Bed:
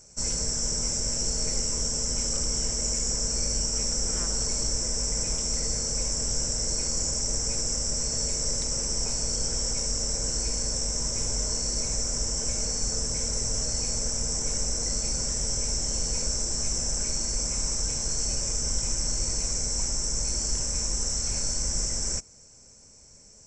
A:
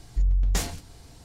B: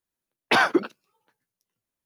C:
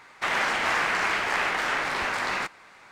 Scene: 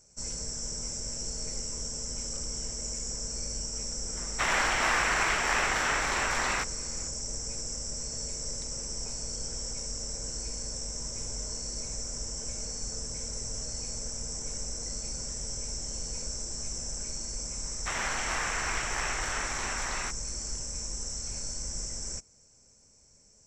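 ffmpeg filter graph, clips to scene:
-filter_complex "[3:a]asplit=2[a][b];[0:a]volume=-8dB[c];[a]atrim=end=2.91,asetpts=PTS-STARTPTS,volume=-2dB,afade=t=in:d=0.004:c=hsin,afade=t=out:st=2.906:d=0.004:c=hsin,adelay=183897S[d];[b]atrim=end=2.91,asetpts=PTS-STARTPTS,volume=-8dB,afade=t=in:d=0.004:c=hsin,afade=t=out:st=2.906:d=0.004:c=hsin,adelay=777924S[e];[c][d][e]amix=inputs=3:normalize=0"

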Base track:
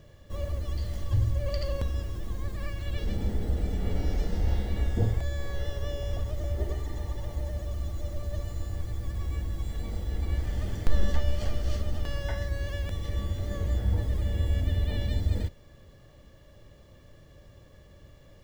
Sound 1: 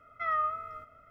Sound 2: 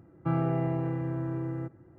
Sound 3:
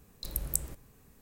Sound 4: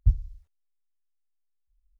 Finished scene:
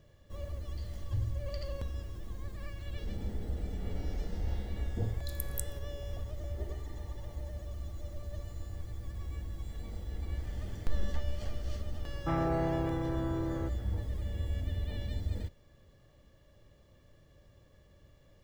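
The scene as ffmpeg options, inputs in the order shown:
-filter_complex "[0:a]volume=-8dB[a];[3:a]alimiter=limit=-7.5dB:level=0:latency=1:release=346[b];[2:a]asplit=2[c][d];[d]highpass=f=720:p=1,volume=17dB,asoftclip=type=tanh:threshold=-17.5dB[e];[c][e]amix=inputs=2:normalize=0,lowpass=f=1.1k:p=1,volume=-6dB[f];[b]atrim=end=1.21,asetpts=PTS-STARTPTS,volume=-5.5dB,afade=t=in:d=0.004:c=hsin,afade=t=out:st=1.206:d=0.004:c=hsin,adelay=5040[g];[f]atrim=end=1.98,asetpts=PTS-STARTPTS,volume=-4dB,afade=t=in:d=0.004:c=hsin,afade=t=out:st=1.976:d=0.004:c=hsin,adelay=12010[h];[a][g][h]amix=inputs=3:normalize=0"

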